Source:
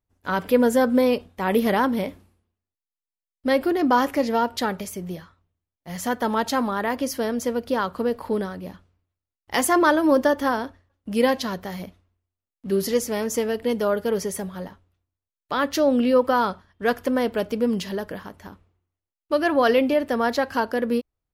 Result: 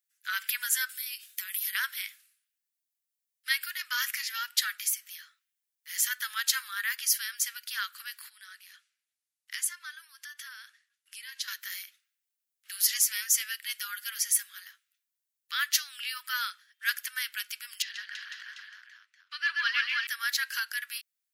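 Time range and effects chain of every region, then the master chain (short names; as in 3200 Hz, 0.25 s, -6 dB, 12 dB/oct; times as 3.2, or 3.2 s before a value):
0.89–1.75 tilt +4.5 dB/oct + compressor 8:1, threshold -35 dBFS + mismatched tape noise reduction decoder only
8.29–11.48 LPF 12000 Hz 24 dB/oct + compressor 4:1, threshold -34 dBFS
17.82–20.07 air absorption 150 m + tapped delay 0.12/0.134/0.329/0.499/0.741 s -13/-3.5/-4/-6/-10.5 dB
whole clip: steep high-pass 1500 Hz 48 dB/oct; high shelf 5500 Hz +11.5 dB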